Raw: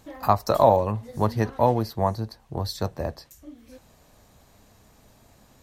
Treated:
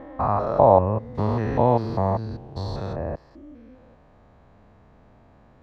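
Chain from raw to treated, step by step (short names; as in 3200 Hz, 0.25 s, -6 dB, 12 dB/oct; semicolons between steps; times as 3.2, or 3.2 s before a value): stepped spectrum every 0.2 s; LPF 1600 Hz 12 dB/oct, from 1.15 s 3300 Hz, from 2.93 s 1700 Hz; gain +4.5 dB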